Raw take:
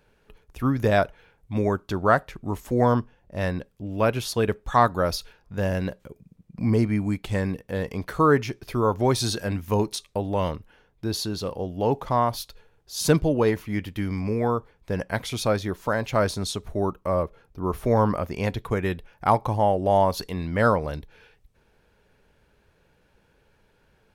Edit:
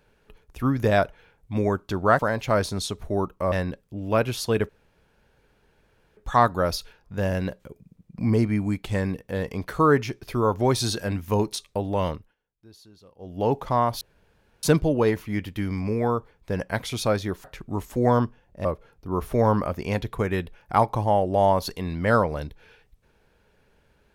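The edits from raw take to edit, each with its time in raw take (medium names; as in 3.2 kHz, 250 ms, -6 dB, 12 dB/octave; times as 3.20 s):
2.19–3.40 s: swap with 15.84–17.17 s
4.57 s: insert room tone 1.48 s
10.52–11.81 s: dip -23 dB, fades 0.23 s
12.41–13.03 s: room tone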